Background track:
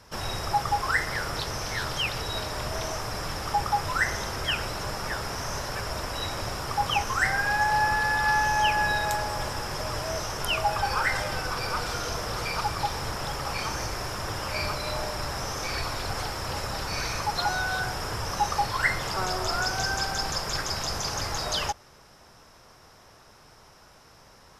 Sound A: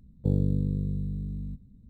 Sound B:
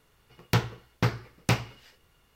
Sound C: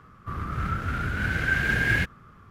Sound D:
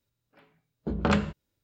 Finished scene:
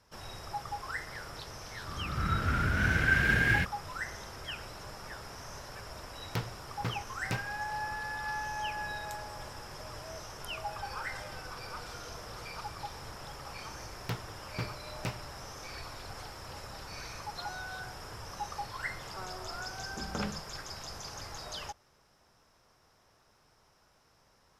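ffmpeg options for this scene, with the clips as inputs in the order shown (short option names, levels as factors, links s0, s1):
-filter_complex "[2:a]asplit=2[s0][s1];[0:a]volume=0.224[s2];[3:a]dynaudnorm=f=110:g=11:m=3.76,atrim=end=2.5,asetpts=PTS-STARTPTS,volume=0.299,afade=t=in:d=0.004:c=hsin,afade=t=out:st=2.496:d=0.004:c=hsin,adelay=1600[s3];[s0]atrim=end=2.35,asetpts=PTS-STARTPTS,volume=0.282,afade=t=in:d=0.004:c=hsin,afade=t=out:st=2.346:d=0.004:c=hsin,adelay=5820[s4];[s1]atrim=end=2.35,asetpts=PTS-STARTPTS,volume=0.237,afade=t=in:d=0.004:c=hsin,afade=t=out:st=2.346:d=0.004:c=hsin,adelay=13560[s5];[4:a]atrim=end=1.63,asetpts=PTS-STARTPTS,volume=0.251,afade=t=in:d=0.004:c=hsin,afade=t=out:st=1.626:d=0.004:c=hsin,adelay=19100[s6];[s2][s3][s4][s5][s6]amix=inputs=5:normalize=0"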